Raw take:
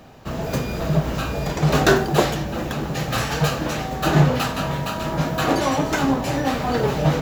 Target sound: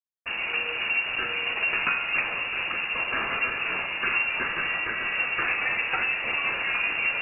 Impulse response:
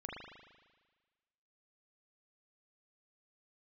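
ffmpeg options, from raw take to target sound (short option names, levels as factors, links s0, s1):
-filter_complex "[0:a]equalizer=f=740:w=3.1:g=-4.5,bandreject=f=60:t=h:w=6,bandreject=f=120:t=h:w=6,bandreject=f=180:t=h:w=6,bandreject=f=240:t=h:w=6,bandreject=f=300:t=h:w=6,acompressor=threshold=0.1:ratio=6,acrusher=bits=4:mix=0:aa=0.5,crystalizer=i=4.5:c=0,asplit=2[s0][s1];[1:a]atrim=start_sample=2205,lowpass=3300[s2];[s1][s2]afir=irnorm=-1:irlink=0,volume=0.422[s3];[s0][s3]amix=inputs=2:normalize=0,lowpass=f=2500:t=q:w=0.5098,lowpass=f=2500:t=q:w=0.6013,lowpass=f=2500:t=q:w=0.9,lowpass=f=2500:t=q:w=2.563,afreqshift=-2900,volume=0.562" -ar 48000 -c:a aac -b:a 160k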